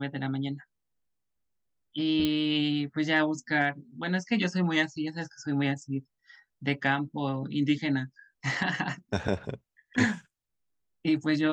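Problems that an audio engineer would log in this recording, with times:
2.25 s: pop -14 dBFS

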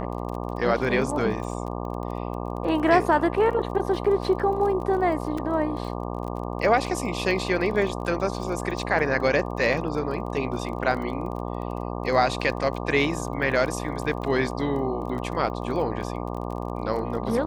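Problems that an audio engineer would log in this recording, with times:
buzz 60 Hz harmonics 20 -31 dBFS
crackle 26 per s -33 dBFS
5.38 s: dropout 3.7 ms

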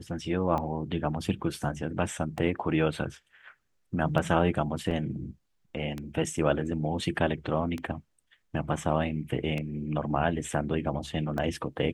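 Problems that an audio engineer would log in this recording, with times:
tick 33 1/3 rpm -20 dBFS
4.91 s: dropout 3.7 ms

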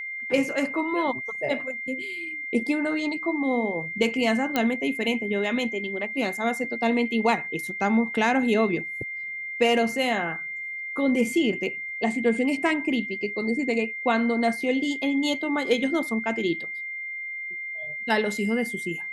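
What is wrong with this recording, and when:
whine 2.1 kHz -31 dBFS
4.56 s: pop -9 dBFS

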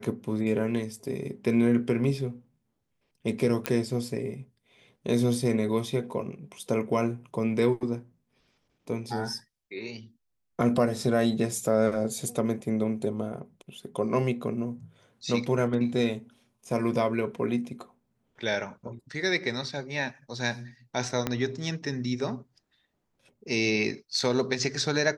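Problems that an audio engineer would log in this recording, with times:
3.66 s: pop -10 dBFS
21.27 s: pop -12 dBFS

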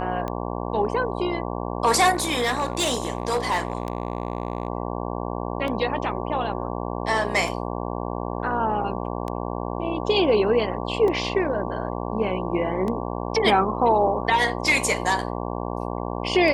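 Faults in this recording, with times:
buzz 60 Hz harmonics 19 -29 dBFS
tick 33 1/3 rpm -17 dBFS
2.13–4.68 s: clipped -18 dBFS

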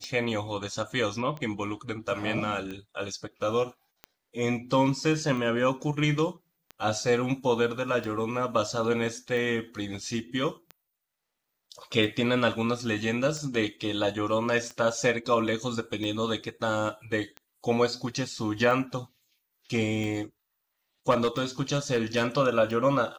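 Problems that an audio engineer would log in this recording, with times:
tick 45 rpm -24 dBFS
21.10–22.26 s: clipped -19.5 dBFS

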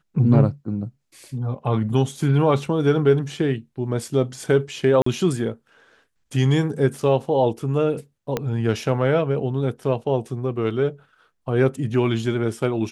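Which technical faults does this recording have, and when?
5.02–5.06 s: dropout 44 ms
8.37 s: pop -9 dBFS

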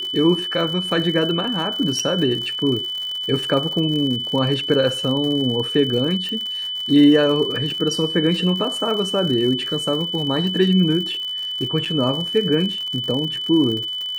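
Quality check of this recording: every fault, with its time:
crackle 92 per s -27 dBFS
whine 3 kHz -24 dBFS
1.99 s: dropout 4.7 ms
6.29 s: pop -16 dBFS
11.85–11.86 s: dropout 6.6 ms

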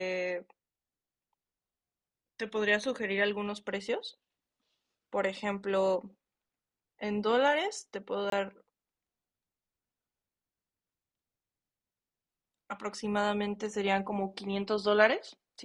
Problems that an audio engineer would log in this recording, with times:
8.30–8.32 s: dropout 23 ms

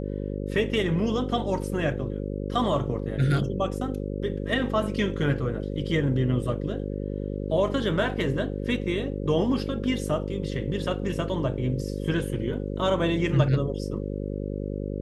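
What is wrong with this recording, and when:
buzz 50 Hz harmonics 11 -31 dBFS

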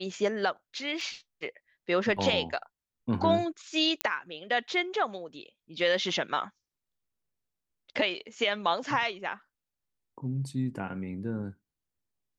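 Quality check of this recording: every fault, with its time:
1.01 s: dropout 2.5 ms
4.01 s: pop -11 dBFS

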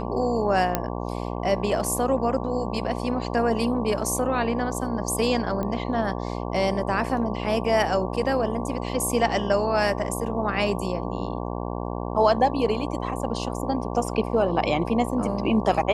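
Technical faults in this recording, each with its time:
buzz 60 Hz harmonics 19 -30 dBFS
0.75 s: pop -7 dBFS
5.63 s: pop -18 dBFS

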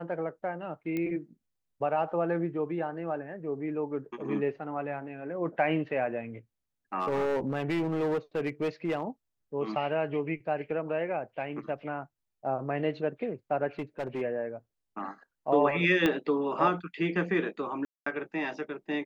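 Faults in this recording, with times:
0.97 s: pop -21 dBFS
6.99–9.03 s: clipped -25 dBFS
13.79–14.22 s: clipped -29 dBFS
16.06 s: pop -13 dBFS
17.85–18.06 s: dropout 214 ms

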